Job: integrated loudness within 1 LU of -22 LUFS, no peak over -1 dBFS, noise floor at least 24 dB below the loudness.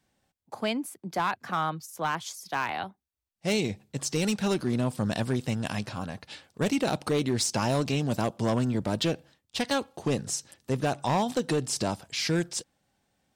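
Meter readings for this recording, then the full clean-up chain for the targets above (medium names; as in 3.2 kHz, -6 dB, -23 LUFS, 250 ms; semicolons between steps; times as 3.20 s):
clipped samples 1.6%; clipping level -20.0 dBFS; dropouts 1; longest dropout 1.2 ms; loudness -29.5 LUFS; peak level -20.0 dBFS; loudness target -22.0 LUFS
-> clip repair -20 dBFS; interpolate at 5.11 s, 1.2 ms; trim +7.5 dB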